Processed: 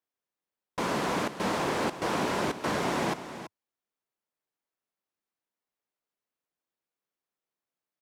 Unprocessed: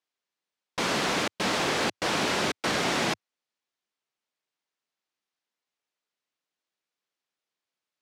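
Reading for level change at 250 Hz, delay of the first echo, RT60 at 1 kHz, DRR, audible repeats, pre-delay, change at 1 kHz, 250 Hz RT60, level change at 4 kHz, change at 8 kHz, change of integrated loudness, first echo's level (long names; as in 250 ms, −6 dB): 0.0 dB, 331 ms, no reverb audible, no reverb audible, 1, no reverb audible, −0.5 dB, no reverb audible, −9.0 dB, −7.0 dB, −3.0 dB, −12.0 dB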